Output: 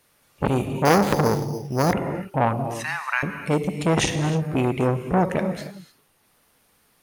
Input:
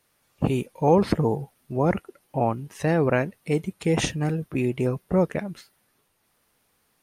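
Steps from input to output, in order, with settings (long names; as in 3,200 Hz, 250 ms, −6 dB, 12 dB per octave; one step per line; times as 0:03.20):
0:02.80–0:03.23: Butterworth high-pass 920 Hz 48 dB per octave
reverb whose tail is shaped and stops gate 330 ms flat, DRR 8 dB
0:00.85–0:01.93: bad sample-rate conversion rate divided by 8×, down none, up hold
saturating transformer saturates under 1,200 Hz
level +5.5 dB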